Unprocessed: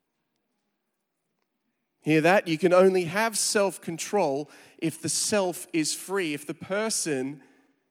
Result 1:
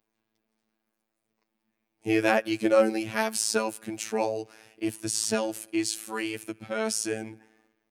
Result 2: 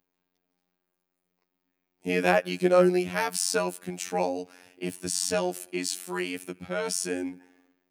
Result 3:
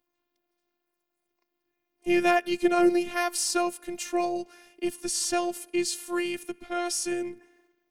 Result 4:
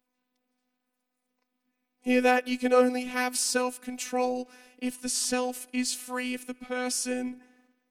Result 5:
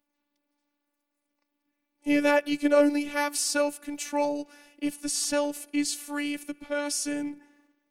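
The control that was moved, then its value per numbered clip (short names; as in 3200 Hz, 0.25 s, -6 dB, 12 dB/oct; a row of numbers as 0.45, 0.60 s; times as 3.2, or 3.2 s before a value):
robotiser, frequency: 110, 90, 350, 250, 290 Hz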